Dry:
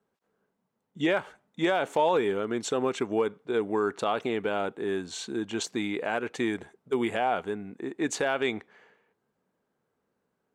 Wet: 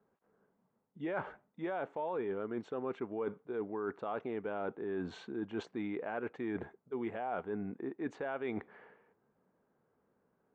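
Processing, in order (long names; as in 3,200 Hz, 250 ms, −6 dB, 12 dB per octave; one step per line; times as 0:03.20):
low-pass filter 1,600 Hz 12 dB per octave
reversed playback
downward compressor 6 to 1, threshold −38 dBFS, peak gain reduction 16.5 dB
reversed playback
level +2.5 dB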